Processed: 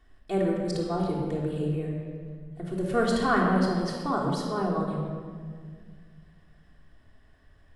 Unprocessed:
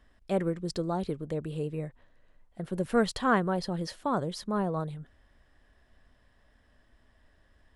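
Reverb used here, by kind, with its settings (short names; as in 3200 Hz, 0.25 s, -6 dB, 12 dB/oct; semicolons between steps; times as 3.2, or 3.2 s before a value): shoebox room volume 2600 m³, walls mixed, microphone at 3.4 m; gain -2.5 dB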